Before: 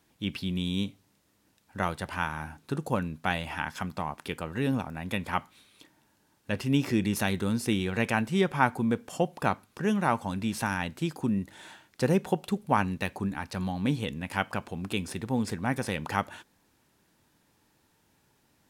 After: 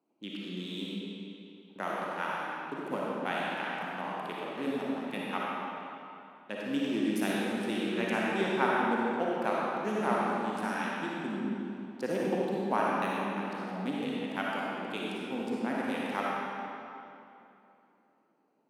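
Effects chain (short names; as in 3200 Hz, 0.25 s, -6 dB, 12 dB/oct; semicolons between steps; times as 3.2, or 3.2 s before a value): Wiener smoothing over 25 samples; HPF 230 Hz 24 dB/oct; digital reverb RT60 2.8 s, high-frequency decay 0.8×, pre-delay 15 ms, DRR -5.5 dB; gain -6.5 dB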